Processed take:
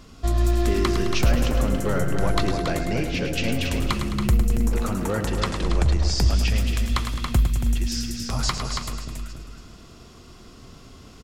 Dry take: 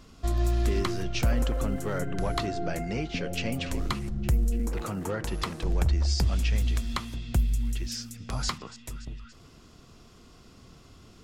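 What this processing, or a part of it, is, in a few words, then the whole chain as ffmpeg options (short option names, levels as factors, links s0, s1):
ducked delay: -filter_complex "[0:a]asplit=3[s0][s1][s2];[s1]adelay=279,volume=0.562[s3];[s2]apad=whole_len=507609[s4];[s3][s4]sidechaincompress=threshold=0.0447:ratio=8:attack=50:release=463[s5];[s0][s5]amix=inputs=2:normalize=0,asettb=1/sr,asplit=3[s6][s7][s8];[s6]atrim=end=5.264[s9];[s7]atrim=start=5.26:end=6.15,asetpts=PTS-STARTPTS,afade=t=in:d=0.004:c=qsin,afade=t=out:st=0.886:d=0.004:c=qsin,lowpass=f=9500:w=0.5412,lowpass=f=9500:w=1.3066[s10];[s8]atrim=start=6.146[s11];[s9][s10]acrossfade=d=0.004:c1=hsin:c2=qsin[s12];[s12][s11]acrossfade=d=0.004:c1=qsin:c2=hsin,aecho=1:1:106|212|318|424|530|636|742:0.376|0.218|0.126|0.0733|0.0425|0.0247|0.0143,volume=1.78"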